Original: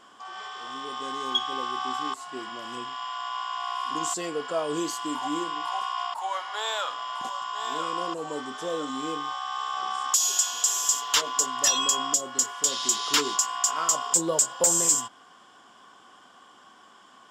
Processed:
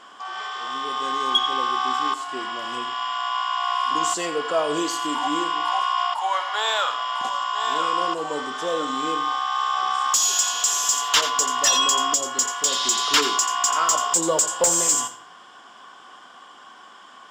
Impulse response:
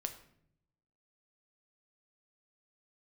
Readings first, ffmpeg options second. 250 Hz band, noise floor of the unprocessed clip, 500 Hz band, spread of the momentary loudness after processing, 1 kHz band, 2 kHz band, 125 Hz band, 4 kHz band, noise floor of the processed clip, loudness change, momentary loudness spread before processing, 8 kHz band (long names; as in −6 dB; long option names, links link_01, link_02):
+3.0 dB, −54 dBFS, +5.0 dB, 9 LU, +7.5 dB, +7.5 dB, +1.0 dB, +6.0 dB, −46 dBFS, +4.5 dB, 13 LU, +2.5 dB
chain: -filter_complex "[0:a]asplit=2[link_01][link_02];[1:a]atrim=start_sample=2205,highshelf=frequency=6100:gain=5.5,adelay=86[link_03];[link_02][link_03]afir=irnorm=-1:irlink=0,volume=-12.5dB[link_04];[link_01][link_04]amix=inputs=2:normalize=0,asplit=2[link_05][link_06];[link_06]highpass=frequency=720:poles=1,volume=7dB,asoftclip=type=tanh:threshold=-12dB[link_07];[link_05][link_07]amix=inputs=2:normalize=0,lowpass=frequency=4400:poles=1,volume=-6dB,volume=5dB"